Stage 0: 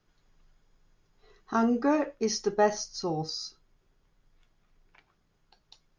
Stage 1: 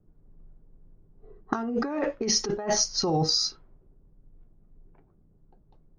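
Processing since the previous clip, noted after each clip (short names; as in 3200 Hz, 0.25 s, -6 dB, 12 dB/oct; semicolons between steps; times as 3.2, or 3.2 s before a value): negative-ratio compressor -33 dBFS, ratio -1; low-pass opened by the level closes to 320 Hz, open at -28 dBFS; gain +6.5 dB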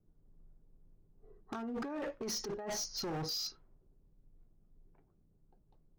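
hard clip -26.5 dBFS, distortion -8 dB; gain -9 dB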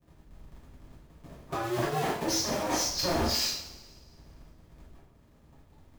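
cycle switcher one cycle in 2, inverted; two-slope reverb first 0.54 s, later 1.7 s, from -17 dB, DRR -9.5 dB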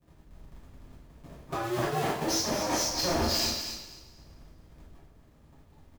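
feedback echo 0.246 s, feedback 20%, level -9 dB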